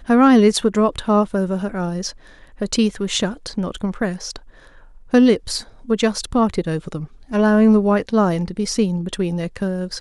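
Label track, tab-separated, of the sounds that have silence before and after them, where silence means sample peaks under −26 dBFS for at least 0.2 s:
2.610000	4.360000	sound
5.130000	5.610000	sound
5.890000	7.050000	sound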